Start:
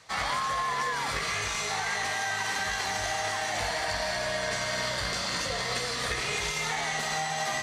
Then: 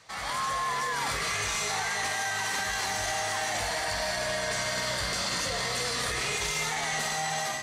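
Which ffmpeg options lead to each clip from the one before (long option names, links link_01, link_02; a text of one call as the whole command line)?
ffmpeg -i in.wav -filter_complex "[0:a]acrossover=split=7400[link_01][link_02];[link_01]alimiter=level_in=4.5dB:limit=-24dB:level=0:latency=1:release=36,volume=-4.5dB[link_03];[link_03][link_02]amix=inputs=2:normalize=0,dynaudnorm=framelen=100:gausssize=5:maxgain=7dB,volume=-1dB" out.wav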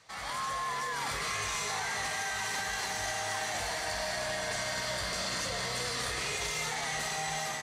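ffmpeg -i in.wav -af "aecho=1:1:863:0.376,volume=-4.5dB" out.wav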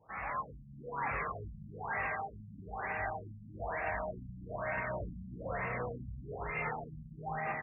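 ffmpeg -i in.wav -af "aphaser=in_gain=1:out_gain=1:delay=2:decay=0.22:speed=1.2:type=triangular,afftfilt=real='re*lt(b*sr/1024,240*pow(2800/240,0.5+0.5*sin(2*PI*1.1*pts/sr)))':imag='im*lt(b*sr/1024,240*pow(2800/240,0.5+0.5*sin(2*PI*1.1*pts/sr)))':win_size=1024:overlap=0.75" out.wav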